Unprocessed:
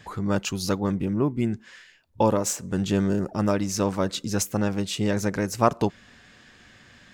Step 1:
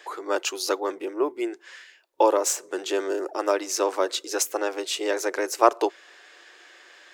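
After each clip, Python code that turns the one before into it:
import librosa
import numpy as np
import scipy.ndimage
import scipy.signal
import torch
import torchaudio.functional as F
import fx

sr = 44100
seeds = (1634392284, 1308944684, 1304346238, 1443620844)

y = scipy.signal.sosfilt(scipy.signal.ellip(4, 1.0, 40, 340.0, 'highpass', fs=sr, output='sos'), x)
y = y * librosa.db_to_amplitude(3.5)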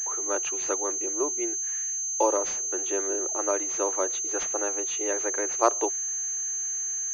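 y = fx.pwm(x, sr, carrier_hz=6300.0)
y = y * librosa.db_to_amplitude(-4.5)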